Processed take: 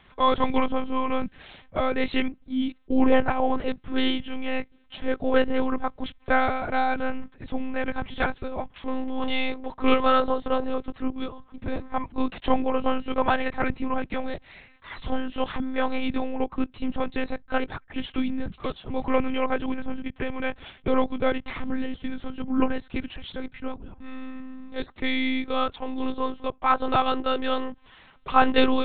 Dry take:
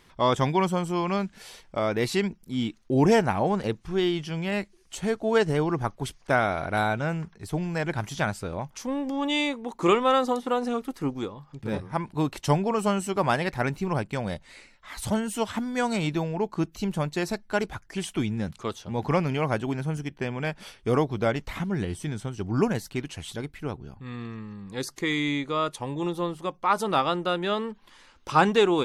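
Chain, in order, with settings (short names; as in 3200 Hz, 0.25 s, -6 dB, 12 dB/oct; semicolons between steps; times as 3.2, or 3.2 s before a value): monotone LPC vocoder at 8 kHz 260 Hz; gain +2 dB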